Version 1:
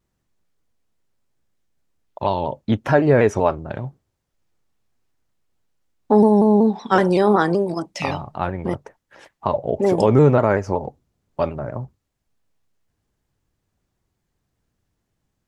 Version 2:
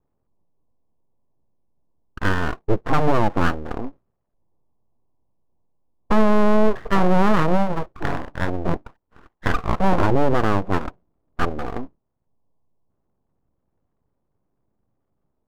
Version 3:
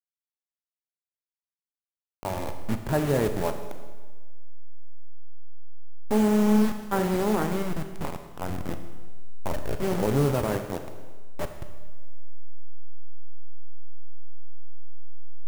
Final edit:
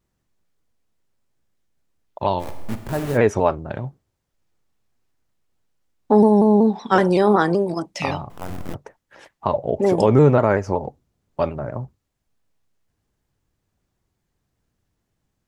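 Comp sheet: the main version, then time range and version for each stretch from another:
1
2.41–3.16 from 3, crossfade 0.06 s
8.3–8.74 from 3
not used: 2

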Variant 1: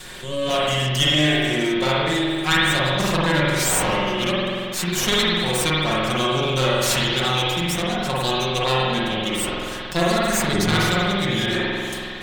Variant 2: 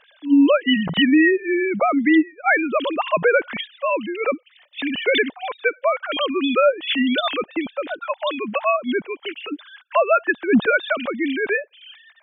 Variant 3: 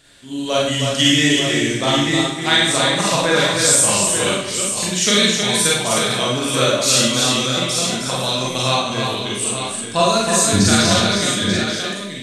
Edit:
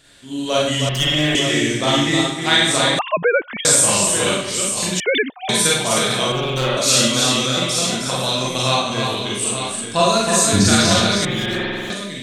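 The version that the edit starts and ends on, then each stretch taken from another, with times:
3
0.89–1.35 from 1
2.99–3.65 from 2
5–5.49 from 2
6.32–6.77 from 1
11.25–11.9 from 1

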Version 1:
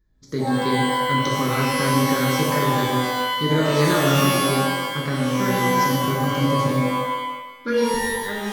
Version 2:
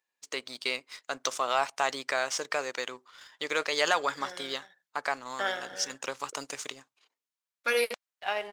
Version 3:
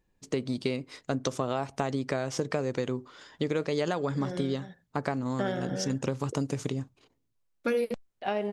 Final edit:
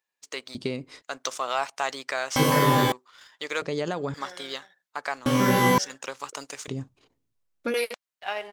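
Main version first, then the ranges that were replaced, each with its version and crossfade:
2
0.55–1.02 from 3
2.36–2.92 from 1
3.62–4.14 from 3
5.26–5.78 from 1
6.68–7.74 from 3

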